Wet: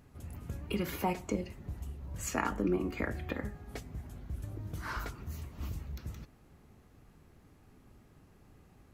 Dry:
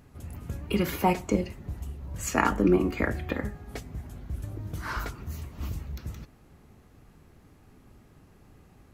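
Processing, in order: compression 1.5:1, threshold -30 dBFS, peak gain reduction 5 dB; trim -4.5 dB

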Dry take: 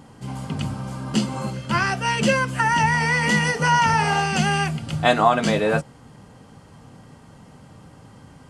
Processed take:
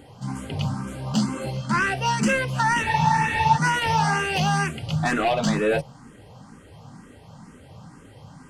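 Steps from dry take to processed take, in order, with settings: saturation -16.5 dBFS, distortion -12 dB; spectral freeze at 2.86 s, 0.70 s; barber-pole phaser +2.1 Hz; trim +3.5 dB

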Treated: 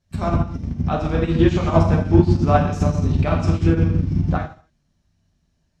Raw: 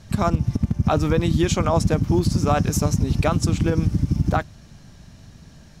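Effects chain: gated-style reverb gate 310 ms falling, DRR -3 dB; low-pass that closes with the level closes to 3 kHz, closed at -9.5 dBFS; upward expansion 2.5:1, over -29 dBFS; trim +2 dB

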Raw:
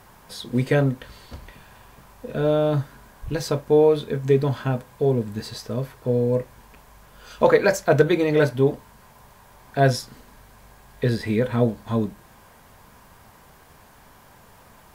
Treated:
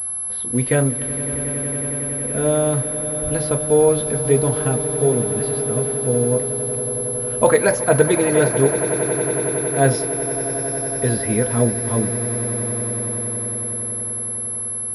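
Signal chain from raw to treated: level-controlled noise filter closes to 2.1 kHz, open at -14.5 dBFS; echo with a slow build-up 92 ms, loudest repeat 8, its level -15.5 dB; class-D stage that switches slowly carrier 11 kHz; trim +1.5 dB

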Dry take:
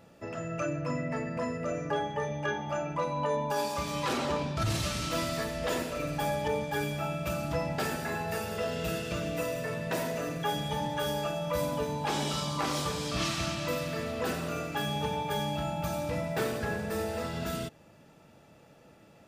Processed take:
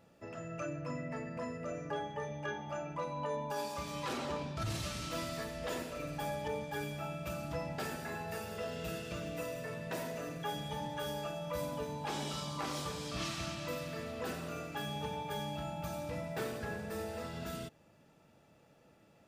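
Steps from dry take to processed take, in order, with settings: 8.34–9.48 s: crackle 62 per s -> 24 per s -42 dBFS; trim -7.5 dB

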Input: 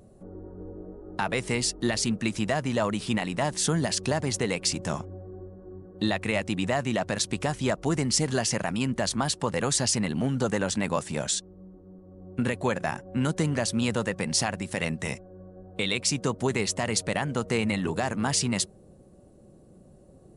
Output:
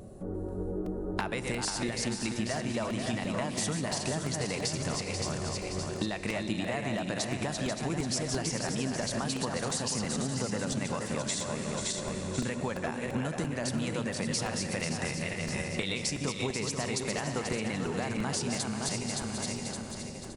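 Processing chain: backward echo that repeats 284 ms, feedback 55%, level -6 dB; Schroeder reverb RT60 3.4 s, combs from 30 ms, DRR 13.5 dB; compression 10:1, threshold -36 dBFS, peak gain reduction 17.5 dB; delay 488 ms -7.5 dB; crackling interface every 0.34 s, samples 128, repeat, from 0.86 s; trim +6.5 dB

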